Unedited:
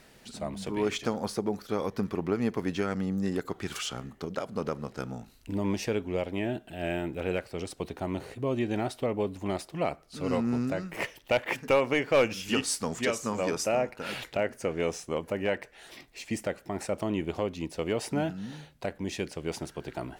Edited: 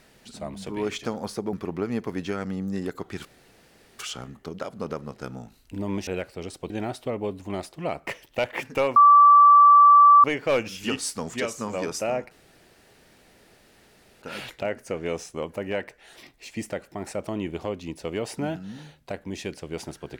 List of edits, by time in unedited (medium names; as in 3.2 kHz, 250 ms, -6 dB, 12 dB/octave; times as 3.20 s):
1.53–2.03 s: delete
3.75 s: insert room tone 0.74 s
5.83–7.24 s: delete
7.87–8.66 s: delete
10.03–11.00 s: delete
11.89 s: add tone 1.16 kHz -9.5 dBFS 1.28 s
13.96 s: insert room tone 1.91 s